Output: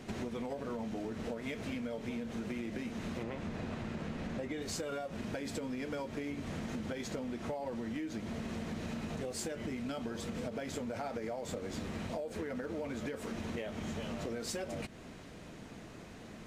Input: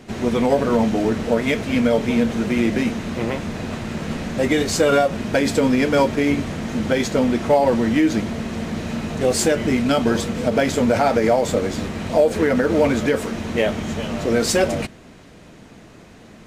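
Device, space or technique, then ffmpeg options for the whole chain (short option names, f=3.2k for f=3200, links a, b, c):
serial compression, peaks first: -filter_complex "[0:a]asettb=1/sr,asplit=3[a][b][c];[a]atrim=end=3.234[d];[b]atrim=start=3.23:end=4.62,asetpts=PTS-STARTPTS,afade=t=in:d=0.004:c=qsin,afade=t=out:st=1.386:d=0.004:c=qsin,aemphasis=mode=reproduction:type=cd[e];[c]atrim=start=4.616[f];[d][e]acrossfade=d=0.004:c1=hsin:c2=qsin[g];[g][f]acrossfade=d=0.004:c1=qsin:c2=hsin,acompressor=threshold=-25dB:ratio=6,acompressor=threshold=-33dB:ratio=2.5,volume=-5.5dB"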